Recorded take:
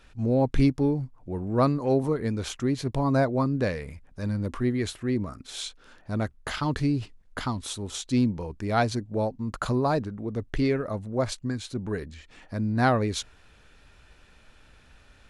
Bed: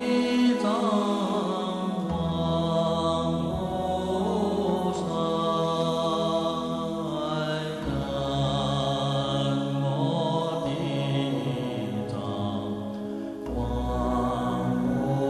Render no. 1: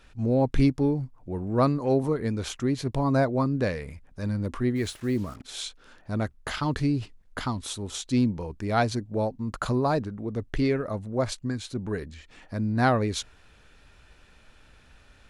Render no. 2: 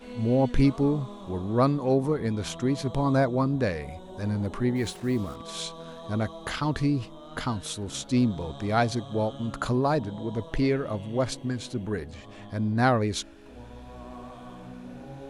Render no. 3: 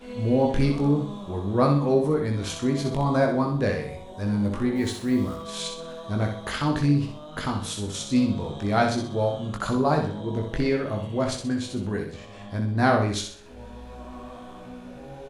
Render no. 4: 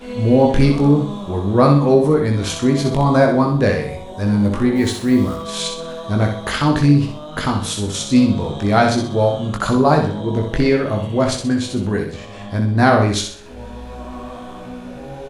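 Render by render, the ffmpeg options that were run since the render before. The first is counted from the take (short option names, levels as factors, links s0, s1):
-filter_complex "[0:a]asplit=3[s0][s1][s2];[s0]afade=t=out:st=4.75:d=0.02[s3];[s1]acrusher=bits=7:mix=0:aa=0.5,afade=t=in:st=4.75:d=0.02,afade=t=out:st=5.42:d=0.02[s4];[s2]afade=t=in:st=5.42:d=0.02[s5];[s3][s4][s5]amix=inputs=3:normalize=0"
-filter_complex "[1:a]volume=0.15[s0];[0:a][s0]amix=inputs=2:normalize=0"
-filter_complex "[0:a]asplit=2[s0][s1];[s1]adelay=20,volume=0.596[s2];[s0][s2]amix=inputs=2:normalize=0,asplit=2[s3][s4];[s4]aecho=0:1:63|126|189|252|315:0.501|0.19|0.0724|0.0275|0.0105[s5];[s3][s5]amix=inputs=2:normalize=0"
-af "volume=2.66,alimiter=limit=0.794:level=0:latency=1"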